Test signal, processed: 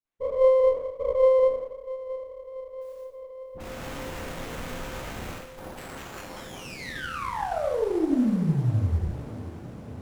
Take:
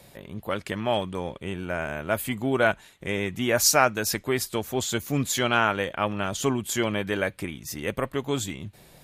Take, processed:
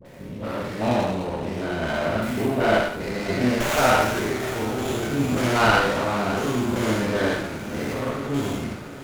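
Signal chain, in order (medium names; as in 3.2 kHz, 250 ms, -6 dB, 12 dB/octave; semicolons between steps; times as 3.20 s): spectrogram pixelated in time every 200 ms; phase dispersion highs, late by 55 ms, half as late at 840 Hz; on a send: echo that smears into a reverb 614 ms, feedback 72%, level -16 dB; on the sum: Schroeder reverb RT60 0.69 s, combs from 25 ms, DRR -2 dB; sliding maximum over 9 samples; trim +3 dB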